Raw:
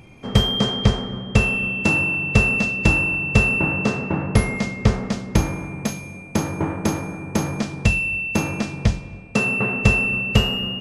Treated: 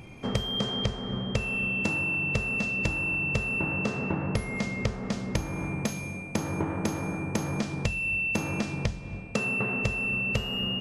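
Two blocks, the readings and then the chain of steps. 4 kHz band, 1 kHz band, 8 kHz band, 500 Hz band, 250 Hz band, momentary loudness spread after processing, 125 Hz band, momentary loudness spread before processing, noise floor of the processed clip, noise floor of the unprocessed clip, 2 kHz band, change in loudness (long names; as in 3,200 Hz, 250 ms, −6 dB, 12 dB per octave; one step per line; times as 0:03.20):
−7.5 dB, −8.0 dB, −8.0 dB, −7.5 dB, −8.0 dB, 6 LU, −10.0 dB, 9 LU, −39 dBFS, −38 dBFS, −7.5 dB, −8.0 dB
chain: downward compressor 10 to 1, threshold −25 dBFS, peak gain reduction 15.5 dB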